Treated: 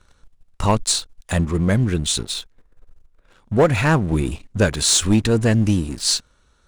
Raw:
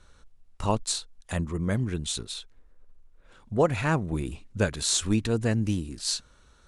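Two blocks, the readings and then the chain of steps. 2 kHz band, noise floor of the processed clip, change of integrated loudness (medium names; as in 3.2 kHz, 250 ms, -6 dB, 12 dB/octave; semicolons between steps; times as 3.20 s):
+9.0 dB, -60 dBFS, +9.0 dB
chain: waveshaping leveller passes 2; trim +2.5 dB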